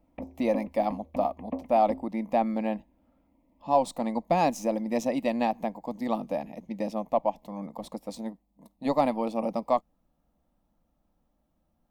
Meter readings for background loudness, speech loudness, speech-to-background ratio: −40.5 LKFS, −29.0 LKFS, 11.5 dB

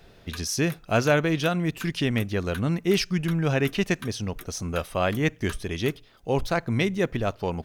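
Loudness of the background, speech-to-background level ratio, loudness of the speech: −45.5 LKFS, 19.5 dB, −26.0 LKFS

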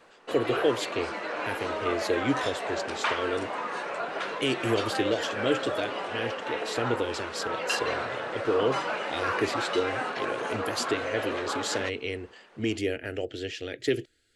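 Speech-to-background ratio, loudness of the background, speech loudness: 0.5 dB, −32.0 LKFS, −31.5 LKFS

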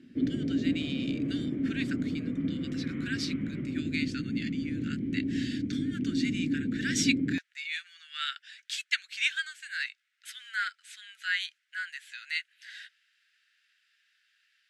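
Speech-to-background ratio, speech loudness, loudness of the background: −3.5 dB, −35.5 LKFS, −32.0 LKFS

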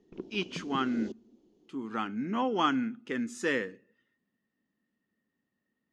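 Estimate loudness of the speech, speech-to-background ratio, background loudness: −32.5 LKFS, 10.5 dB, −43.0 LKFS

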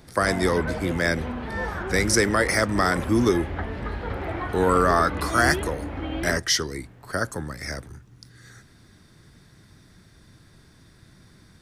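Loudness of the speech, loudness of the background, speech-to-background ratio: −23.5 LKFS, −31.5 LKFS, 8.0 dB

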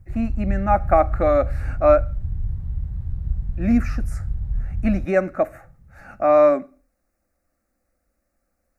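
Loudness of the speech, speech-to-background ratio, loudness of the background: −20.5 LKFS, 8.5 dB, −29.0 LKFS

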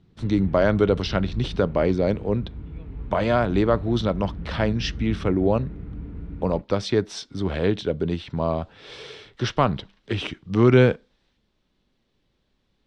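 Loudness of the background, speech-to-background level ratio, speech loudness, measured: −36.5 LKFS, 13.0 dB, −23.5 LKFS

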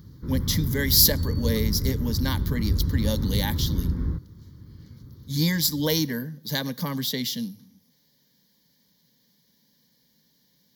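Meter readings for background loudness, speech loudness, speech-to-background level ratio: −28.0 LKFS, −25.0 LKFS, 3.0 dB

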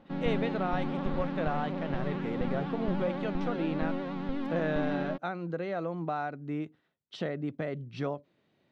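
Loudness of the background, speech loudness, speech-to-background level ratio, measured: −35.0 LKFS, −35.5 LKFS, −0.5 dB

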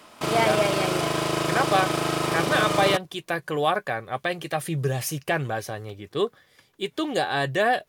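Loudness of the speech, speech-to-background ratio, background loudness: −26.5 LKFS, −1.0 dB, −25.5 LKFS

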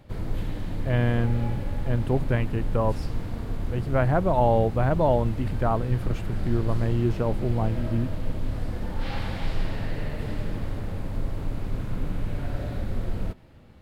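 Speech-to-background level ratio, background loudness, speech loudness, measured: 6.5 dB, −33.0 LKFS, −26.5 LKFS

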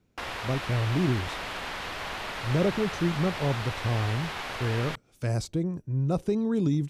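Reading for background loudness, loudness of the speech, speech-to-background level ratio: −34.5 LKFS, −29.0 LKFS, 5.5 dB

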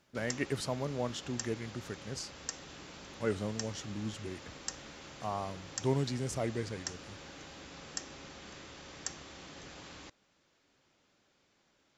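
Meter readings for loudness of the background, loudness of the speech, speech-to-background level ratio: −45.5 LKFS, −37.5 LKFS, 8.0 dB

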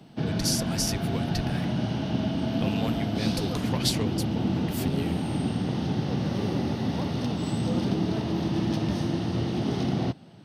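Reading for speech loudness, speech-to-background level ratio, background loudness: −32.5 LKFS, −4.5 dB, −28.0 LKFS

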